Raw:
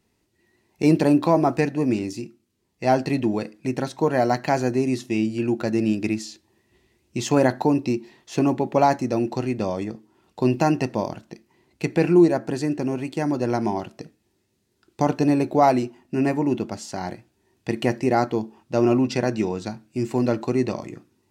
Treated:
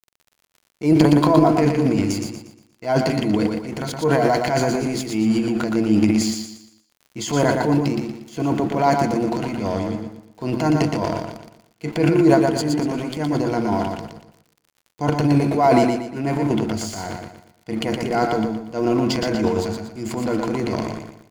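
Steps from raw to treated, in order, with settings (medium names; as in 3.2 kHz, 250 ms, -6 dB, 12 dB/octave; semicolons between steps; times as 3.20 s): rippled EQ curve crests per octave 1.8, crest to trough 10 dB; crossover distortion -44.5 dBFS; transient shaper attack -7 dB, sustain +10 dB; crackle 27 per s -38 dBFS; on a send: feedback delay 118 ms, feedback 37%, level -4.5 dB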